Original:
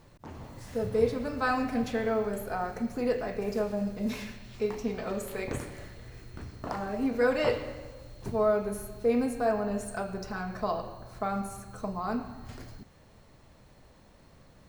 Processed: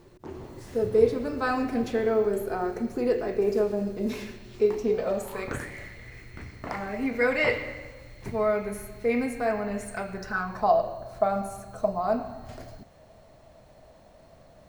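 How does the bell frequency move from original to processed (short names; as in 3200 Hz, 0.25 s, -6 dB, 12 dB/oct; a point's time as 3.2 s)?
bell +15 dB 0.4 oct
4.86 s 370 Hz
5.72 s 2100 Hz
10.14 s 2100 Hz
10.77 s 650 Hz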